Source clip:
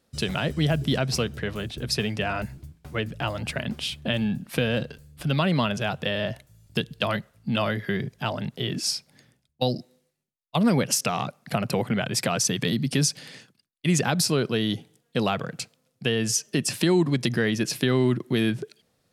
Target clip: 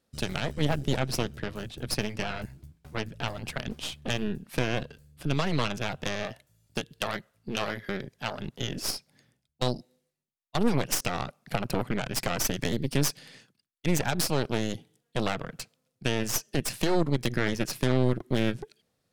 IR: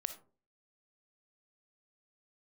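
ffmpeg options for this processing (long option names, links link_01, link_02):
-filter_complex "[0:a]aeval=exprs='0.447*(cos(1*acos(clip(val(0)/0.447,-1,1)))-cos(1*PI/2))+0.126*(cos(6*acos(clip(val(0)/0.447,-1,1)))-cos(6*PI/2))':channel_layout=same,asettb=1/sr,asplit=3[link_01][link_02][link_03];[link_01]atrim=end=6.234[link_04];[link_02]atrim=start=6.23:end=8.4,asetpts=PTS-STARTPTS,afade=type=in:duration=0.004:curve=qsin,afade=type=out:start_time=2.166:duration=0.004:curve=qsin,lowshelf=frequency=180:gain=-8[link_05];[link_03]atrim=start=8.396[link_06];[link_04][link_05]acrossfade=duration=0.004:curve1=hsin:curve2=qsin[link_07];[link_07][link_06]acrossfade=duration=0.004:curve1=qsin:curve2=hsin,volume=-6.5dB"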